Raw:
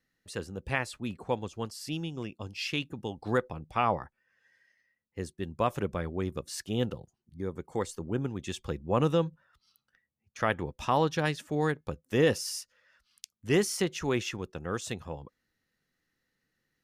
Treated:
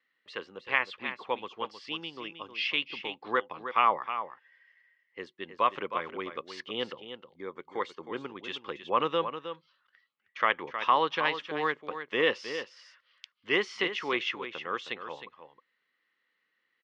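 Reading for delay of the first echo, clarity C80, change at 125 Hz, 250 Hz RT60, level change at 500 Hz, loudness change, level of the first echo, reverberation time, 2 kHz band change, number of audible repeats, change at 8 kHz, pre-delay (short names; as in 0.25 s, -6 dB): 0.314 s, none, -18.5 dB, none, -2.5 dB, +0.5 dB, -10.0 dB, none, +5.0 dB, 1, under -15 dB, none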